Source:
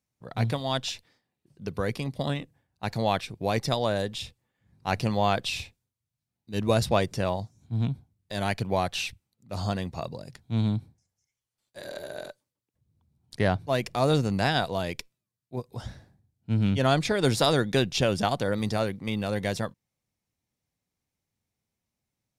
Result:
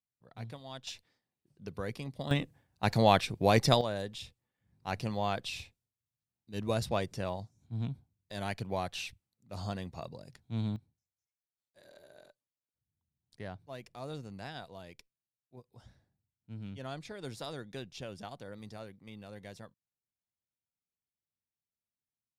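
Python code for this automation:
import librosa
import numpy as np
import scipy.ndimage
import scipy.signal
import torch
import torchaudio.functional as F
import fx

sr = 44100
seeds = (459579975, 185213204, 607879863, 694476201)

y = fx.gain(x, sr, db=fx.steps((0.0, -17.0), (0.87, -9.0), (2.31, 2.0), (3.81, -8.5), (10.76, -19.0)))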